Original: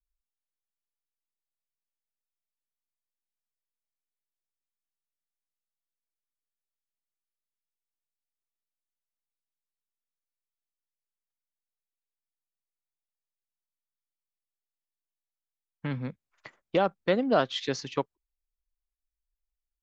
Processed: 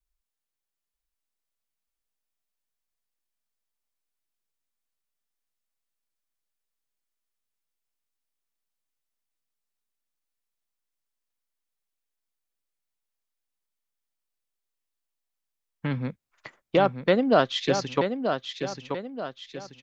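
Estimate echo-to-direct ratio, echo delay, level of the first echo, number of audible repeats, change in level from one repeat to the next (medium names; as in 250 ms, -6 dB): -6.0 dB, 932 ms, -7.0 dB, 4, -7.5 dB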